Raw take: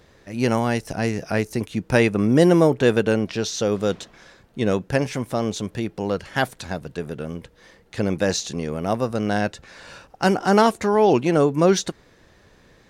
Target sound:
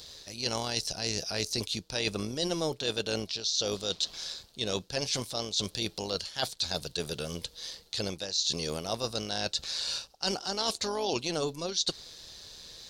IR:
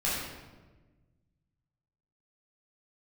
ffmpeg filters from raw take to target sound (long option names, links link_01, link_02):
-filter_complex "[0:a]highshelf=frequency=2900:width_type=q:width=3:gain=13.5,acrossover=split=7000[link_01][link_02];[link_02]acompressor=threshold=-38dB:ratio=4:attack=1:release=60[link_03];[link_01][link_03]amix=inputs=2:normalize=0,equalizer=frequency=125:width_type=o:width=1:gain=-3,equalizer=frequency=250:width_type=o:width=1:gain=-7,equalizer=frequency=2000:width_type=o:width=1:gain=6,areverse,acompressor=threshold=-26dB:ratio=8,areverse,tremolo=f=160:d=0.462"